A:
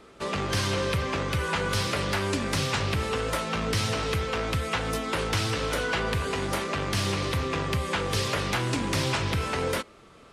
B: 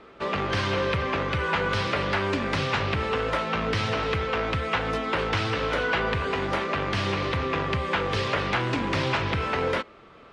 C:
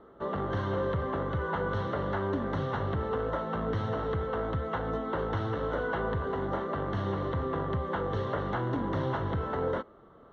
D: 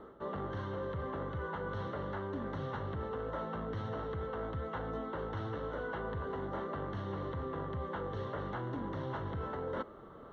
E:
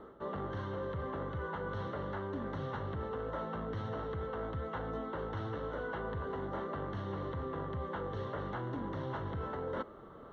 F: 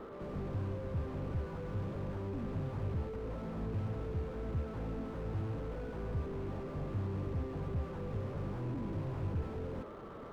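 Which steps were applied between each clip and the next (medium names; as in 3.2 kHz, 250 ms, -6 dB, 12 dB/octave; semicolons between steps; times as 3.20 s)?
low-pass 3 kHz 12 dB/octave; bass shelf 290 Hz -5.5 dB; trim +4 dB
boxcar filter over 18 samples; trim -3 dB
band-stop 690 Hz, Q 22; reverse; compression 10:1, threshold -39 dBFS, peak gain reduction 13.5 dB; reverse; trim +3.5 dB
no audible change
rattle on loud lows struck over -46 dBFS, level -41 dBFS; reverse echo 95 ms -13 dB; slew-rate limiter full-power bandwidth 2.2 Hz; trim +5 dB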